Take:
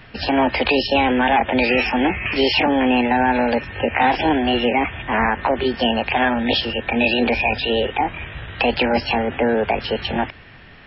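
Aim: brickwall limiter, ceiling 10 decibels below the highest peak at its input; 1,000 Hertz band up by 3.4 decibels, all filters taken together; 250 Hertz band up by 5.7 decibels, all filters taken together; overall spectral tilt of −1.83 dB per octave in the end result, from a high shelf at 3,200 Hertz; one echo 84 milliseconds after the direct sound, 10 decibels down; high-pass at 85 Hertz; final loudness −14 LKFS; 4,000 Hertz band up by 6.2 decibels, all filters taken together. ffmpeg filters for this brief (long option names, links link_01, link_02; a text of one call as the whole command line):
ffmpeg -i in.wav -af "highpass=85,equalizer=frequency=250:width_type=o:gain=6,equalizer=frequency=1000:width_type=o:gain=3.5,highshelf=frequency=3200:gain=4.5,equalizer=frequency=4000:width_type=o:gain=5.5,alimiter=limit=-11.5dB:level=0:latency=1,aecho=1:1:84:0.316,volume=5.5dB" out.wav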